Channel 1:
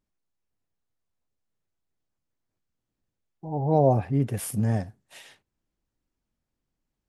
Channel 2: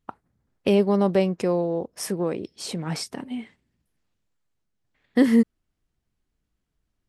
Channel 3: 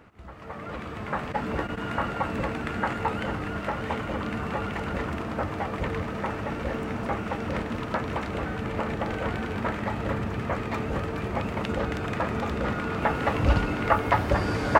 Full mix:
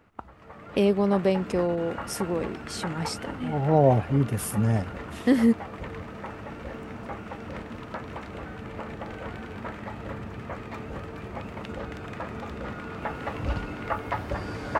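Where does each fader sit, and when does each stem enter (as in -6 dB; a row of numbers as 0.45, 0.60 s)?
+1.0, -2.5, -7.5 dB; 0.00, 0.10, 0.00 s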